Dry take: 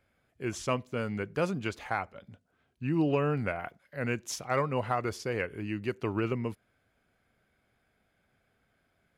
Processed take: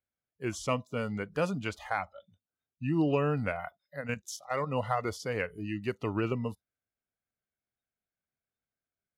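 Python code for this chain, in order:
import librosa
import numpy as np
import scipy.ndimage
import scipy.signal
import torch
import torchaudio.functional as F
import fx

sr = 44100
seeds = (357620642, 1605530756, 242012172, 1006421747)

y = fx.level_steps(x, sr, step_db=10, at=(4.0, 4.66), fade=0.02)
y = fx.noise_reduce_blind(y, sr, reduce_db=24)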